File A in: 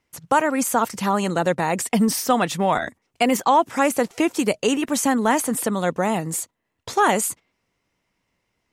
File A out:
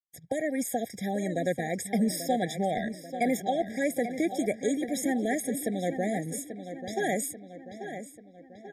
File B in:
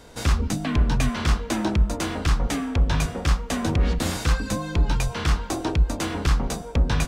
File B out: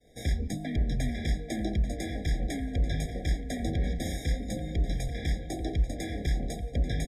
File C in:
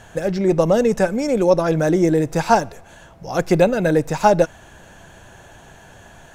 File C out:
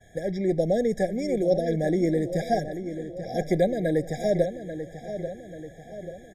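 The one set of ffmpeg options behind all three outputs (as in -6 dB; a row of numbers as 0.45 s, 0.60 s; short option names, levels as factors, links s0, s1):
-filter_complex "[0:a]asplit=2[s0][s1];[s1]adelay=838,lowpass=f=4100:p=1,volume=0.316,asplit=2[s2][s3];[s3]adelay=838,lowpass=f=4100:p=1,volume=0.52,asplit=2[s4][s5];[s5]adelay=838,lowpass=f=4100:p=1,volume=0.52,asplit=2[s6][s7];[s7]adelay=838,lowpass=f=4100:p=1,volume=0.52,asplit=2[s8][s9];[s9]adelay=838,lowpass=f=4100:p=1,volume=0.52,asplit=2[s10][s11];[s11]adelay=838,lowpass=f=4100:p=1,volume=0.52[s12];[s0][s2][s4][s6][s8][s10][s12]amix=inputs=7:normalize=0,agate=range=0.0224:threshold=0.00794:ratio=3:detection=peak,afftfilt=real='re*eq(mod(floor(b*sr/1024/800),2),0)':imag='im*eq(mod(floor(b*sr/1024/800),2),0)':win_size=1024:overlap=0.75,volume=0.422"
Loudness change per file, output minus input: -9.0 LU, -7.5 LU, -8.5 LU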